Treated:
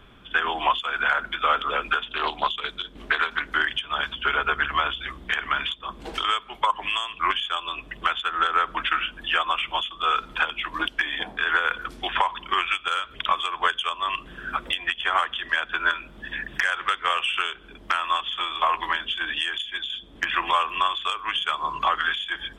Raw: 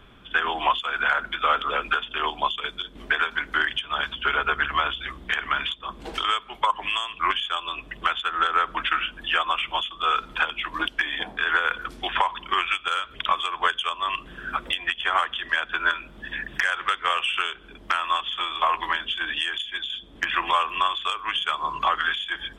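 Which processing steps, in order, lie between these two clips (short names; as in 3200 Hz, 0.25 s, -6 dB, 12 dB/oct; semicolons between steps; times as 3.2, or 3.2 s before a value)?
2.03–3.51 Doppler distortion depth 0.22 ms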